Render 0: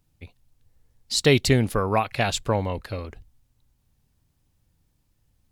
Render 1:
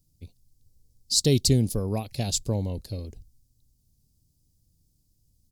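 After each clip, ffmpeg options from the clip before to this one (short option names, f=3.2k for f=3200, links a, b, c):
-af "firequalizer=gain_entry='entry(180,0);entry(1300,-25);entry(4800,4)':delay=0.05:min_phase=1"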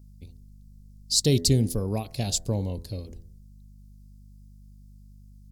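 -af "aeval=exprs='val(0)+0.00398*(sin(2*PI*50*n/s)+sin(2*PI*2*50*n/s)/2+sin(2*PI*3*50*n/s)/3+sin(2*PI*4*50*n/s)/4+sin(2*PI*5*50*n/s)/5)':c=same,bandreject=f=83.77:t=h:w=4,bandreject=f=167.54:t=h:w=4,bandreject=f=251.31:t=h:w=4,bandreject=f=335.08:t=h:w=4,bandreject=f=418.85:t=h:w=4,bandreject=f=502.62:t=h:w=4,bandreject=f=586.39:t=h:w=4,bandreject=f=670.16:t=h:w=4,bandreject=f=753.93:t=h:w=4,bandreject=f=837.7:t=h:w=4,bandreject=f=921.47:t=h:w=4,bandreject=f=1.00524k:t=h:w=4,bandreject=f=1.08901k:t=h:w=4,bandreject=f=1.17278k:t=h:w=4,bandreject=f=1.25655k:t=h:w=4,bandreject=f=1.34032k:t=h:w=4,bandreject=f=1.42409k:t=h:w=4,bandreject=f=1.50786k:t=h:w=4,bandreject=f=1.59163k:t=h:w=4,bandreject=f=1.6754k:t=h:w=4,bandreject=f=1.75917k:t=h:w=4,bandreject=f=1.84294k:t=h:w=4,bandreject=f=1.92671k:t=h:w=4,bandreject=f=2.01048k:t=h:w=4"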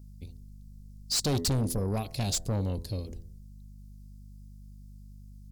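-af "asoftclip=type=tanh:threshold=-25.5dB,volume=1.5dB"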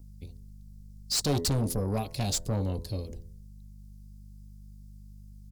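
-filter_complex "[0:a]acrossover=split=300|1300|5700[a][b][c][d];[b]asplit=2[e][f];[f]adelay=14,volume=-3dB[g];[e][g]amix=inputs=2:normalize=0[h];[d]acrusher=bits=3:mode=log:mix=0:aa=0.000001[i];[a][h][c][i]amix=inputs=4:normalize=0"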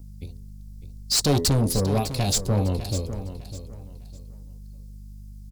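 -af "aecho=1:1:603|1206|1809:0.251|0.0703|0.0197,volume=6.5dB"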